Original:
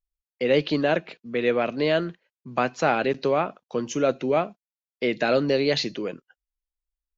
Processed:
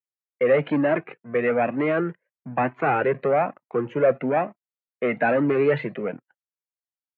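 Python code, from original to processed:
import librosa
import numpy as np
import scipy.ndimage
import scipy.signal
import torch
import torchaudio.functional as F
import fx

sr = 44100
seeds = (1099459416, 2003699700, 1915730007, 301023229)

y = fx.leveller(x, sr, passes=2)
y = scipy.signal.sosfilt(scipy.signal.ellip(3, 1.0, 40, [120.0, 2100.0], 'bandpass', fs=sr, output='sos'), y)
y = fx.comb_cascade(y, sr, direction='rising', hz=1.1)
y = F.gain(torch.from_numpy(y), 2.0).numpy()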